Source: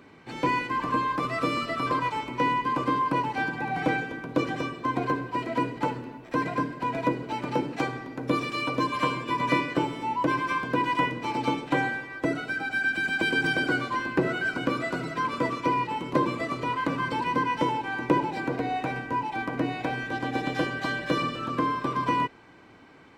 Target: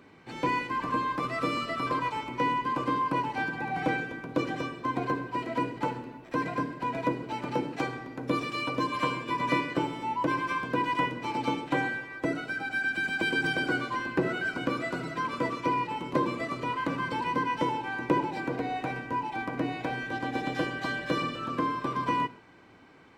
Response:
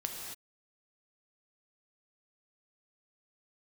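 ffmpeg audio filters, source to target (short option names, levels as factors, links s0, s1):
-filter_complex "[0:a]asplit=2[s0][s1];[1:a]atrim=start_sample=2205,asetrate=88200,aresample=44100[s2];[s1][s2]afir=irnorm=-1:irlink=0,volume=0.473[s3];[s0][s3]amix=inputs=2:normalize=0,volume=0.596"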